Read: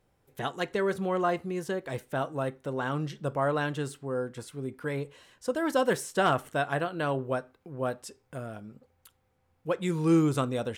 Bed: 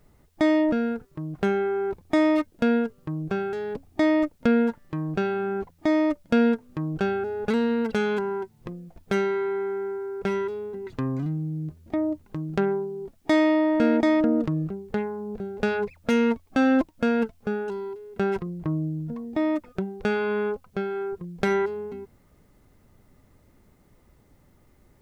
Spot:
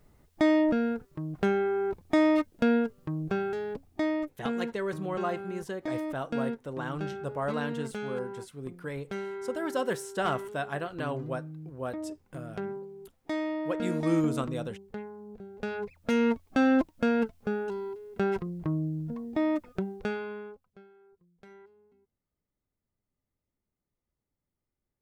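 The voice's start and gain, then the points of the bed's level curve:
4.00 s, −4.5 dB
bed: 0:03.55 −2.5 dB
0:04.45 −12 dB
0:15.48 −12 dB
0:16.27 −3 dB
0:19.91 −3 dB
0:20.99 −29.5 dB

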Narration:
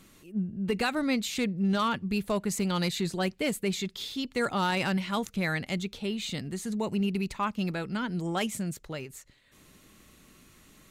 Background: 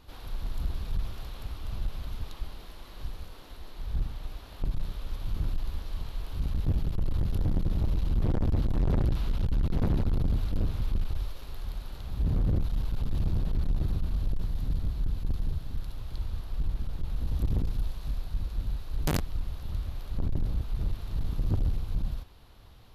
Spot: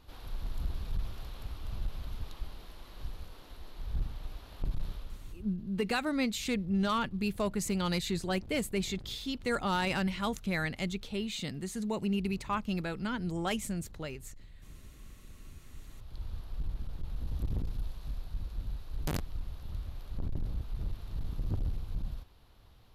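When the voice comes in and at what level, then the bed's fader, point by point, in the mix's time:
5.10 s, −3.0 dB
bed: 0:04.93 −3.5 dB
0:05.57 −22 dB
0:15.36 −22 dB
0:16.28 −6 dB

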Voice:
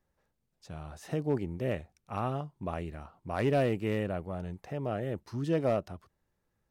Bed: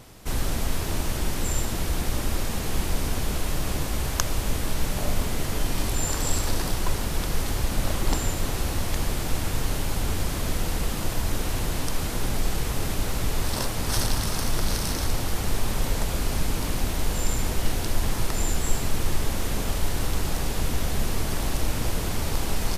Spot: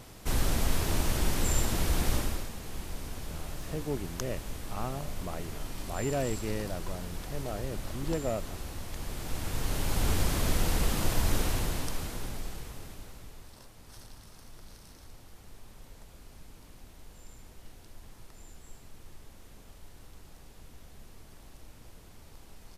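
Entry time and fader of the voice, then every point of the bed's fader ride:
2.60 s, −4.0 dB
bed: 0:02.15 −1.5 dB
0:02.53 −13 dB
0:08.92 −13 dB
0:10.08 −1 dB
0:11.39 −1 dB
0:13.56 −25.5 dB

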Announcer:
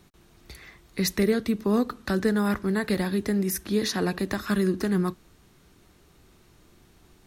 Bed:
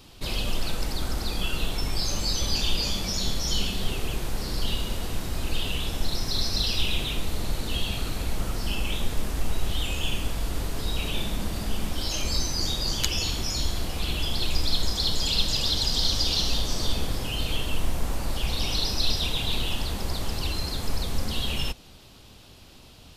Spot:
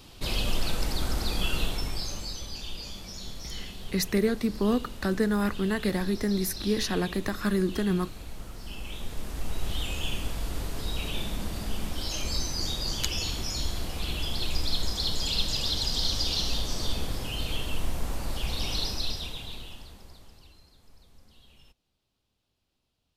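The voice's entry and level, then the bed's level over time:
2.95 s, −2.0 dB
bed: 0:01.59 0 dB
0:02.50 −12.5 dB
0:08.57 −12.5 dB
0:09.72 −3.5 dB
0:18.83 −3.5 dB
0:20.72 −29 dB

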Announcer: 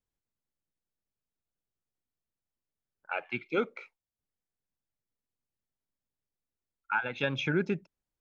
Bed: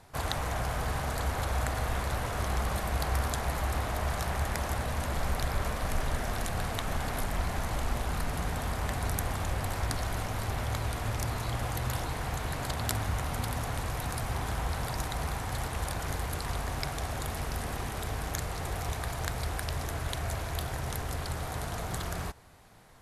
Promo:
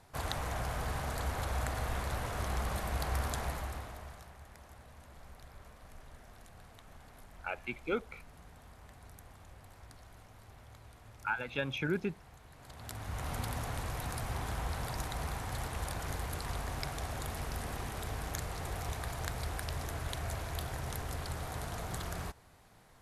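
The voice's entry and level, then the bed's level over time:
4.35 s, −4.5 dB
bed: 0:03.44 −4.5 dB
0:04.36 −22.5 dB
0:12.52 −22.5 dB
0:13.29 −4.5 dB

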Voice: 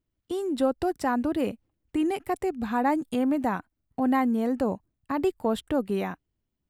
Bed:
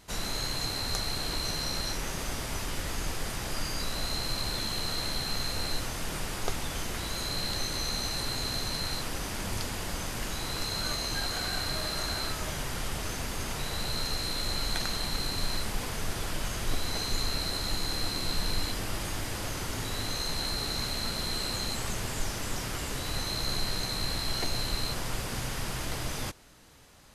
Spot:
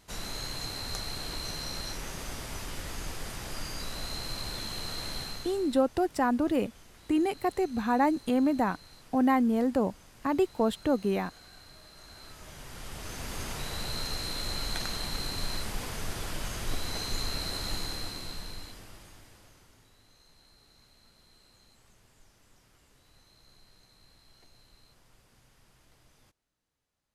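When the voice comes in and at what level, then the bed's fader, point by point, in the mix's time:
5.15 s, −0.5 dB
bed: 0:05.22 −4.5 dB
0:05.83 −20.5 dB
0:11.92 −20.5 dB
0:13.35 −2.5 dB
0:17.77 −2.5 dB
0:19.98 −29 dB

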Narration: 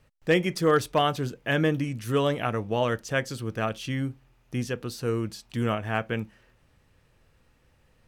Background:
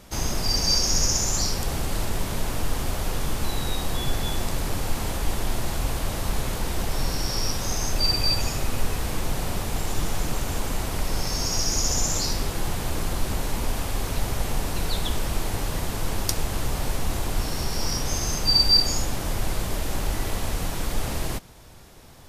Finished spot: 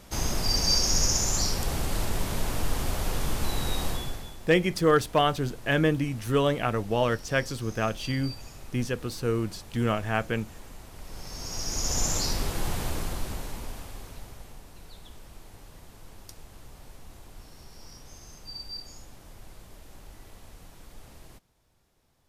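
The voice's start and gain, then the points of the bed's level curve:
4.20 s, +0.5 dB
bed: 0:03.88 −2 dB
0:04.38 −18.5 dB
0:10.93 −18.5 dB
0:12.03 −2.5 dB
0:12.82 −2.5 dB
0:14.64 −21.5 dB

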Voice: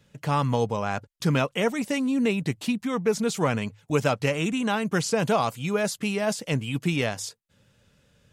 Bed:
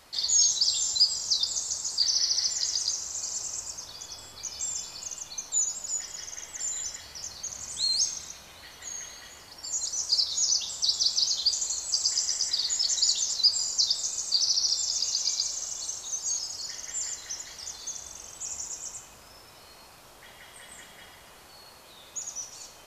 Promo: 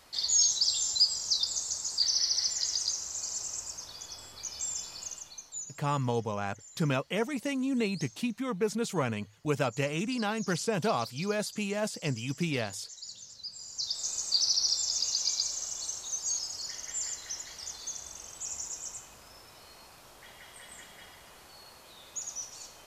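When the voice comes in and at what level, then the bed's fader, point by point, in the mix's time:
5.55 s, −6.0 dB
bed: 0:05.07 −2.5 dB
0:05.90 −20 dB
0:13.47 −20 dB
0:14.10 −2 dB

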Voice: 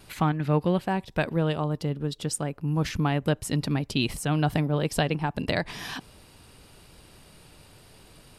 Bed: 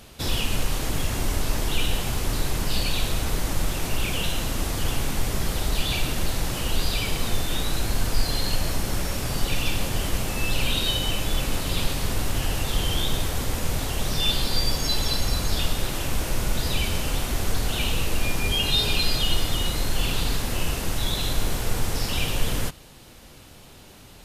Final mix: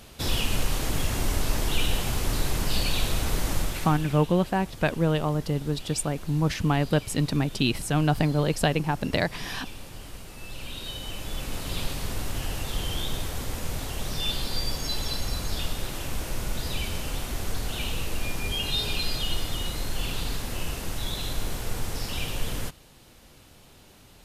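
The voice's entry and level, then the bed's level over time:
3.65 s, +1.5 dB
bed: 0:03.56 −1 dB
0:04.28 −16.5 dB
0:10.34 −16.5 dB
0:11.72 −5.5 dB

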